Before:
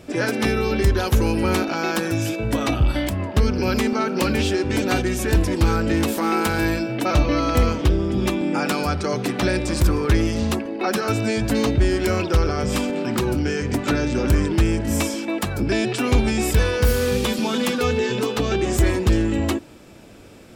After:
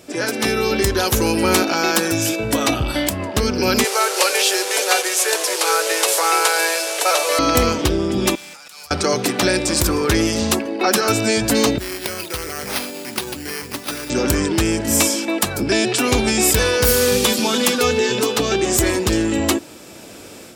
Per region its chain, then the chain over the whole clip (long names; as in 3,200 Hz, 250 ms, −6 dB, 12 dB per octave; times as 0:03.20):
0:03.84–0:07.39: linear delta modulator 64 kbit/s, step −26.5 dBFS + Butterworth high-pass 420 Hz 48 dB per octave
0:08.35–0:08.91: guitar amp tone stack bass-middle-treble 10-0-10 + compressor whose output falls as the input rises −41 dBFS + tube saturation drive 42 dB, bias 0.7
0:11.78–0:14.10: first-order pre-emphasis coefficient 0.8 + bad sample-rate conversion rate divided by 6×, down none, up hold
whole clip: high-pass filter 97 Hz 6 dB per octave; bass and treble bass −5 dB, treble +8 dB; automatic gain control gain up to 8 dB